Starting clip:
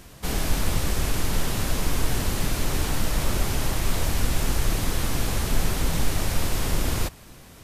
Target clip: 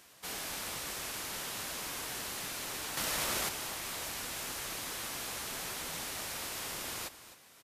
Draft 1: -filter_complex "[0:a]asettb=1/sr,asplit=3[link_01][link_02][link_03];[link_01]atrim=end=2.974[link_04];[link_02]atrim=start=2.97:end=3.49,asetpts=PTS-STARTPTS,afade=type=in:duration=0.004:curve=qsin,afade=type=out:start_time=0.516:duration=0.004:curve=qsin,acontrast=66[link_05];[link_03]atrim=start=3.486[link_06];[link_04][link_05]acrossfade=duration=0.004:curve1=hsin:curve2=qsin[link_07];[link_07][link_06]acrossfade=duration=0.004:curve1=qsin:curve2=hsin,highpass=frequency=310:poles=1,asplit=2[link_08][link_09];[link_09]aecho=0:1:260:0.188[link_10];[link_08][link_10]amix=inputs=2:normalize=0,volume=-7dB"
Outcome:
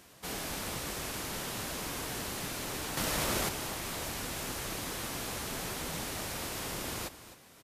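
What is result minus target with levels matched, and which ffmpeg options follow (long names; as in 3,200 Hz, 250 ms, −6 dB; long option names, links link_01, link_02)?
250 Hz band +7.0 dB
-filter_complex "[0:a]asettb=1/sr,asplit=3[link_01][link_02][link_03];[link_01]atrim=end=2.974[link_04];[link_02]atrim=start=2.97:end=3.49,asetpts=PTS-STARTPTS,afade=type=in:duration=0.004:curve=qsin,afade=type=out:start_time=0.516:duration=0.004:curve=qsin,acontrast=66[link_05];[link_03]atrim=start=3.486[link_06];[link_04][link_05]acrossfade=duration=0.004:curve1=hsin:curve2=qsin[link_07];[link_07][link_06]acrossfade=duration=0.004:curve1=qsin:curve2=hsin,highpass=frequency=1000:poles=1,asplit=2[link_08][link_09];[link_09]aecho=0:1:260:0.188[link_10];[link_08][link_10]amix=inputs=2:normalize=0,volume=-7dB"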